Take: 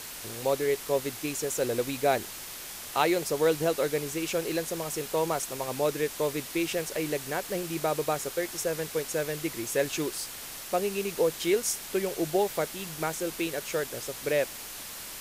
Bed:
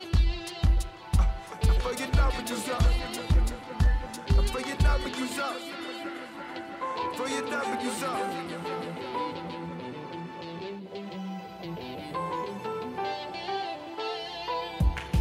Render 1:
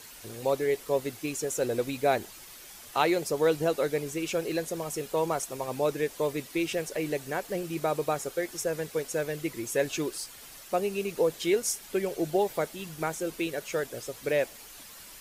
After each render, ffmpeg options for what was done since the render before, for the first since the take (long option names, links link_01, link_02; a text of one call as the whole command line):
ffmpeg -i in.wav -af "afftdn=noise_reduction=9:noise_floor=-41" out.wav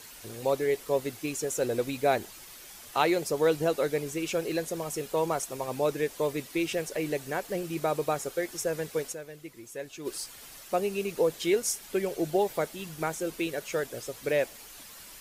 ffmpeg -i in.wav -filter_complex "[0:a]asplit=3[link_01][link_02][link_03];[link_01]atrim=end=9.27,asetpts=PTS-STARTPTS,afade=type=out:start_time=9.12:duration=0.15:curve=exp:silence=0.266073[link_04];[link_02]atrim=start=9.27:end=9.92,asetpts=PTS-STARTPTS,volume=-11.5dB[link_05];[link_03]atrim=start=9.92,asetpts=PTS-STARTPTS,afade=type=in:duration=0.15:curve=exp:silence=0.266073[link_06];[link_04][link_05][link_06]concat=n=3:v=0:a=1" out.wav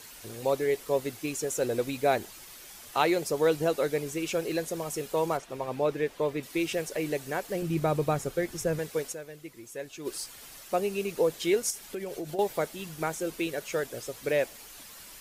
ffmpeg -i in.wav -filter_complex "[0:a]asettb=1/sr,asplit=3[link_01][link_02][link_03];[link_01]atrim=end=5.374[link_04];[link_02]atrim=start=5.37:end=6.43,asetpts=PTS-STARTPTS,afade=type=in:duration=0.004:curve=qsin,afade=type=out:start_time=1.056:duration=0.004:curve=qsin,acrossover=split=3900[link_05][link_06];[link_06]acompressor=threshold=-57dB:ratio=4:attack=1:release=60[link_07];[link_05][link_07]amix=inputs=2:normalize=0[link_08];[link_03]atrim=start=6.426[link_09];[link_04][link_08]acrossfade=duration=0.004:curve1=hsin:curve2=qsin[link_10];[link_10][link_09]acrossfade=duration=0.004:curve1=qsin:curve2=hsin,asettb=1/sr,asplit=3[link_11][link_12][link_13];[link_11]atrim=end=7.624[link_14];[link_12]atrim=start=7.62:end=8.79,asetpts=PTS-STARTPTS,afade=type=in:duration=0.004:curve=qsin,afade=type=out:start_time=1.166:duration=0.004:curve=qsin,bass=frequency=250:gain=11,treble=frequency=4000:gain=-3[link_15];[link_13]atrim=start=8.786[link_16];[link_14][link_15]acrossfade=duration=0.004:curve1=hsin:curve2=qsin[link_17];[link_17][link_16]acrossfade=duration=0.004:curve1=qsin:curve2=hsin,asettb=1/sr,asplit=3[link_18][link_19][link_20];[link_18]atrim=end=11.704[link_21];[link_19]atrim=start=11.7:end=12.39,asetpts=PTS-STARTPTS,afade=type=in:duration=0.004:curve=qsin,afade=type=out:start_time=0.686:duration=0.004:curve=qsin,acompressor=threshold=-32dB:ratio=5:attack=3.2:release=140:knee=1:detection=peak[link_22];[link_20]atrim=start=12.386[link_23];[link_21][link_22]acrossfade=duration=0.004:curve1=hsin:curve2=qsin[link_24];[link_24][link_23]acrossfade=duration=0.004:curve1=qsin:curve2=hsin" out.wav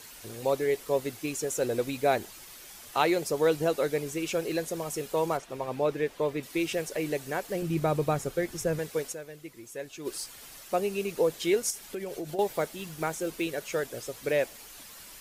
ffmpeg -i in.wav -filter_complex "[0:a]asettb=1/sr,asplit=3[link_01][link_02][link_03];[link_01]atrim=end=12.584[link_04];[link_02]atrim=start=12.58:end=13.45,asetpts=PTS-STARTPTS,afade=type=in:duration=0.004:curve=qsin,afade=type=out:start_time=0.866:duration=0.004:curve=qsin,acrusher=bits=8:mode=log:mix=0:aa=0.000001[link_05];[link_03]atrim=start=13.446[link_06];[link_04][link_05]acrossfade=duration=0.004:curve1=hsin:curve2=qsin[link_07];[link_07][link_06]acrossfade=duration=0.004:curve1=qsin:curve2=hsin" out.wav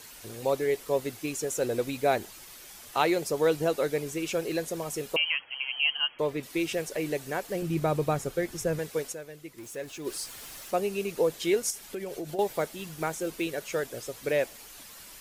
ffmpeg -i in.wav -filter_complex "[0:a]asettb=1/sr,asplit=3[link_01][link_02][link_03];[link_01]atrim=end=5.164[link_04];[link_02]atrim=start=5.16:end=6.19,asetpts=PTS-STARTPTS,afade=type=in:duration=0.004:curve=qsin,afade=type=out:start_time=1.026:duration=0.004:curve=qsin,lowpass=frequency=2800:width_type=q:width=0.5098,lowpass=frequency=2800:width_type=q:width=0.6013,lowpass=frequency=2800:width_type=q:width=0.9,lowpass=frequency=2800:width_type=q:width=2.563,afreqshift=-3300[link_05];[link_03]atrim=start=6.186[link_06];[link_04][link_05]acrossfade=duration=0.004:curve1=hsin:curve2=qsin[link_07];[link_07][link_06]acrossfade=duration=0.004:curve1=qsin:curve2=hsin,asettb=1/sr,asplit=3[link_08][link_09][link_10];[link_08]atrim=end=9.584[link_11];[link_09]atrim=start=9.58:end=10.71,asetpts=PTS-STARTPTS,afade=type=in:duration=0.004:curve=qsin,afade=type=out:start_time=1.126:duration=0.004:curve=qsin,aeval=exprs='val(0)+0.5*0.00501*sgn(val(0))':channel_layout=same[link_12];[link_10]atrim=start=10.706[link_13];[link_11][link_12]acrossfade=duration=0.004:curve1=hsin:curve2=qsin[link_14];[link_14][link_13]acrossfade=duration=0.004:curve1=qsin:curve2=hsin" out.wav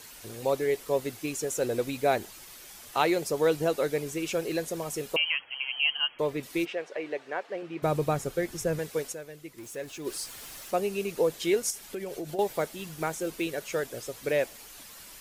ffmpeg -i in.wav -filter_complex "[0:a]asplit=3[link_01][link_02][link_03];[link_01]afade=type=out:start_time=6.64:duration=0.02[link_04];[link_02]highpass=440,lowpass=2600,afade=type=in:start_time=6.64:duration=0.02,afade=type=out:start_time=7.82:duration=0.02[link_05];[link_03]afade=type=in:start_time=7.82:duration=0.02[link_06];[link_04][link_05][link_06]amix=inputs=3:normalize=0" out.wav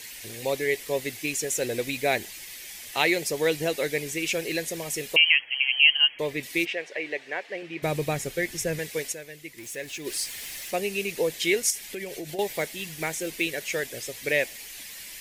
ffmpeg -i in.wav -af "highshelf=frequency=1600:width_type=q:width=3:gain=6" out.wav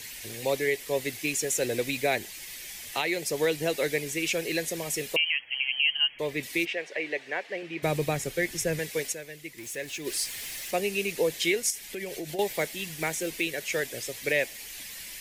ffmpeg -i in.wav -filter_complex "[0:a]acrossover=split=190|660|2700[link_01][link_02][link_03][link_04];[link_01]acompressor=mode=upward:threshold=-54dB:ratio=2.5[link_05];[link_05][link_02][link_03][link_04]amix=inputs=4:normalize=0,alimiter=limit=-15dB:level=0:latency=1:release=384" out.wav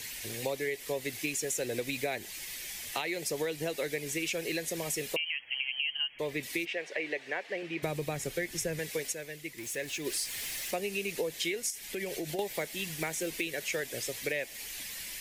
ffmpeg -i in.wav -af "acompressor=threshold=-30dB:ratio=6" out.wav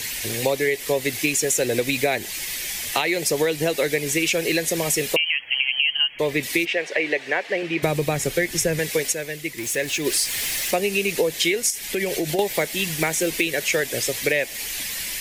ffmpeg -i in.wav -af "volume=12dB" out.wav